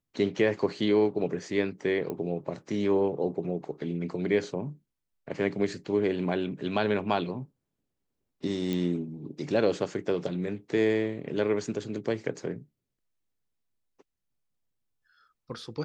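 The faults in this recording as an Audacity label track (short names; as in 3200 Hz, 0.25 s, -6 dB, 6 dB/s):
2.100000	2.100000	pop -22 dBFS
8.730000	8.730000	pop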